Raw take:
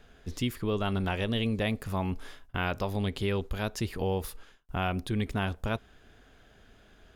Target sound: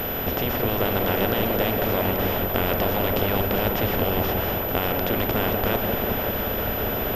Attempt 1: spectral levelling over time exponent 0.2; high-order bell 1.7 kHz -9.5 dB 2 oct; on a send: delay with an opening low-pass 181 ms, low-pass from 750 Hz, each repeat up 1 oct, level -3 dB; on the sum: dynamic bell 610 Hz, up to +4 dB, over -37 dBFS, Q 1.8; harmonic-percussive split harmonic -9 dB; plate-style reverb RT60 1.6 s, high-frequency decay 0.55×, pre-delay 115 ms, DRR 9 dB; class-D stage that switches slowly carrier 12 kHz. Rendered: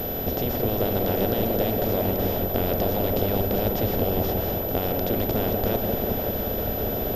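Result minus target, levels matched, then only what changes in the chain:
2 kHz band -8.0 dB
remove: high-order bell 1.7 kHz -9.5 dB 2 oct

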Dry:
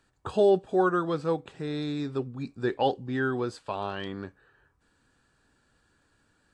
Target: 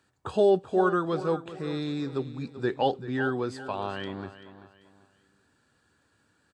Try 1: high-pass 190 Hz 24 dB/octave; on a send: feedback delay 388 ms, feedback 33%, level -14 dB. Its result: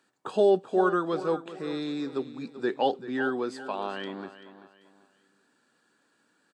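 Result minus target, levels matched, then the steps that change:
125 Hz band -8.0 dB
change: high-pass 70 Hz 24 dB/octave

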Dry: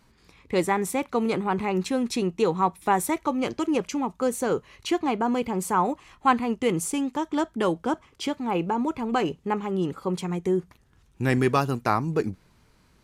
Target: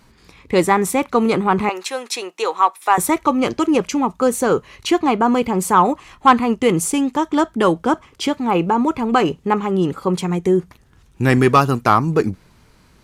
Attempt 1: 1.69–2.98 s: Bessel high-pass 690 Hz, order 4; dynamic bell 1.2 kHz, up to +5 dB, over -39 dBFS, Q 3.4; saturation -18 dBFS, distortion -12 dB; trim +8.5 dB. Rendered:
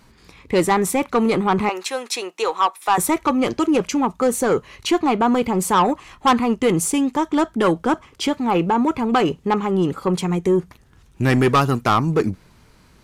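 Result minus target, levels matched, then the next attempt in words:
saturation: distortion +12 dB
1.69–2.98 s: Bessel high-pass 690 Hz, order 4; dynamic bell 1.2 kHz, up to +5 dB, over -39 dBFS, Q 3.4; saturation -8.5 dBFS, distortion -24 dB; trim +8.5 dB

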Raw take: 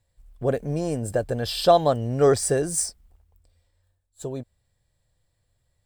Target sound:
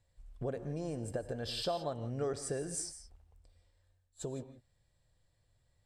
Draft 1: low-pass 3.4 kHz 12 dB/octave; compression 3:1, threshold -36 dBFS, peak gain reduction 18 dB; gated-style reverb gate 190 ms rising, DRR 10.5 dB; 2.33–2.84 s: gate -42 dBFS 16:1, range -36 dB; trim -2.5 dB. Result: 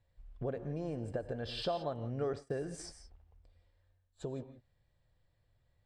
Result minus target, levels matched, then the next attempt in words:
8 kHz band -11.0 dB
low-pass 8.5 kHz 12 dB/octave; compression 3:1, threshold -36 dBFS, peak gain reduction 18 dB; gated-style reverb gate 190 ms rising, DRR 10.5 dB; 2.33–2.84 s: gate -42 dBFS 16:1, range -36 dB; trim -2.5 dB

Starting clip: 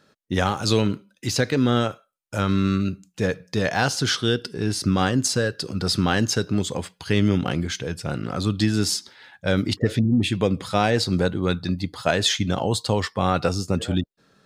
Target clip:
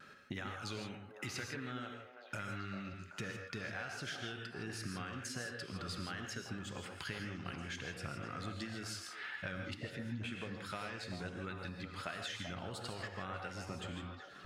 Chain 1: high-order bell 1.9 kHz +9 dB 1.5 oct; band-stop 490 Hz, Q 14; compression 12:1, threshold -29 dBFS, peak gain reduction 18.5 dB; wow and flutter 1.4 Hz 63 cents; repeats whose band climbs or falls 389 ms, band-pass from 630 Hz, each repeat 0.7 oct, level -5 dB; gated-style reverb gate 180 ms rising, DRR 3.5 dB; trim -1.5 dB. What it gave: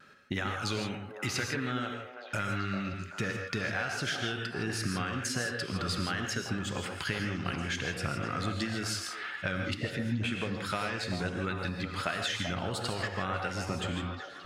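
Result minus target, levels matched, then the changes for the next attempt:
compression: peak gain reduction -10 dB
change: compression 12:1, threshold -40 dBFS, peak gain reduction 28.5 dB

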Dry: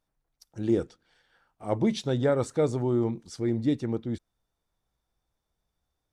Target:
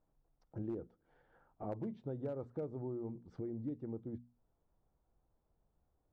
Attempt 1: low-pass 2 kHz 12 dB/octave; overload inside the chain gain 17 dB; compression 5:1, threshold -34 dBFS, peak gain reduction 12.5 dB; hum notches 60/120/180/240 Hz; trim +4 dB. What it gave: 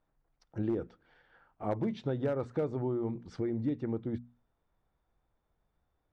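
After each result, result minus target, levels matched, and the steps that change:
compression: peak gain reduction -9 dB; 2 kHz band +7.5 dB
change: compression 5:1, threshold -45 dBFS, peak gain reduction 21.5 dB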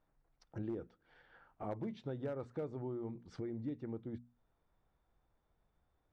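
2 kHz band +8.5 dB
change: low-pass 850 Hz 12 dB/octave

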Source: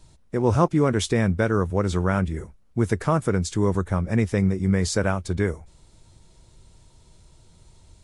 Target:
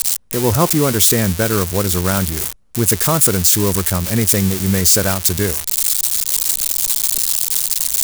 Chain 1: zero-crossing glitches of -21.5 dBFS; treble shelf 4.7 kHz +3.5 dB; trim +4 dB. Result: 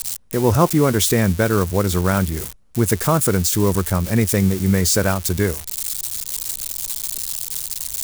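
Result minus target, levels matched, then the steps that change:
zero-crossing glitches: distortion -9 dB
change: zero-crossing glitches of -12.5 dBFS

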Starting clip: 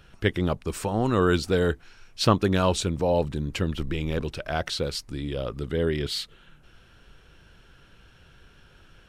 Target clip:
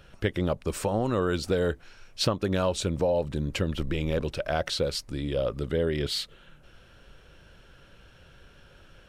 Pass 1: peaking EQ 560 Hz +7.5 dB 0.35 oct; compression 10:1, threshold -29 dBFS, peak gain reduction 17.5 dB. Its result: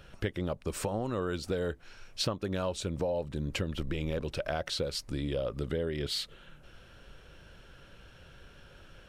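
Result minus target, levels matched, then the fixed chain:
compression: peak gain reduction +7 dB
peaking EQ 560 Hz +7.5 dB 0.35 oct; compression 10:1, threshold -21.5 dBFS, peak gain reduction 10.5 dB

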